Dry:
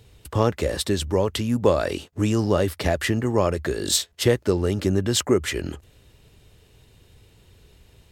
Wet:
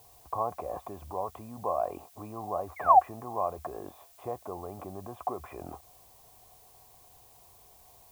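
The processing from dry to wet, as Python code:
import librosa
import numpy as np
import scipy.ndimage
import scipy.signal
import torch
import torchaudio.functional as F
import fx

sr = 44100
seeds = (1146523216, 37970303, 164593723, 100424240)

p1 = fx.over_compress(x, sr, threshold_db=-31.0, ratio=-1.0)
p2 = x + (p1 * 10.0 ** (1.5 / 20.0))
p3 = fx.spec_paint(p2, sr, seeds[0], shape='fall', start_s=2.76, length_s=0.23, low_hz=700.0, high_hz=2300.0, level_db=-12.0)
p4 = fx.formant_cascade(p3, sr, vowel='a')
p5 = fx.dmg_noise_colour(p4, sr, seeds[1], colour='blue', level_db=-61.0)
y = p5 * 10.0 ** (2.5 / 20.0)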